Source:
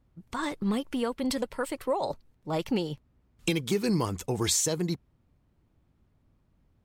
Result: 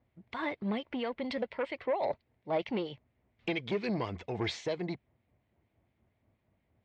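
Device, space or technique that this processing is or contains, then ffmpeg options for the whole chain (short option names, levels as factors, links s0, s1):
guitar amplifier with harmonic tremolo: -filter_complex "[0:a]acrossover=split=1700[s0][s1];[s0]aeval=exprs='val(0)*(1-0.5/2+0.5/2*cos(2*PI*4.3*n/s))':c=same[s2];[s1]aeval=exprs='val(0)*(1-0.5/2-0.5/2*cos(2*PI*4.3*n/s))':c=same[s3];[s2][s3]amix=inputs=2:normalize=0,asoftclip=type=tanh:threshold=0.0596,highpass=94,equalizer=f=160:t=q:w=4:g=-8,equalizer=f=280:t=q:w=4:g=-4,equalizer=f=660:t=q:w=4:g=6,equalizer=f=1300:t=q:w=4:g=-5,equalizer=f=2100:t=q:w=4:g=8,lowpass=f=3800:w=0.5412,lowpass=f=3800:w=1.3066"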